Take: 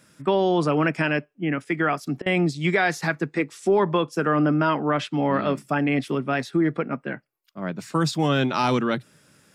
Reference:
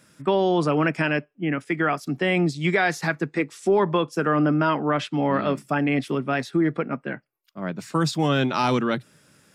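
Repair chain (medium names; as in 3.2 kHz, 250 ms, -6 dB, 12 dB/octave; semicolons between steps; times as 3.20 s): interpolate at 2.22 s, 40 ms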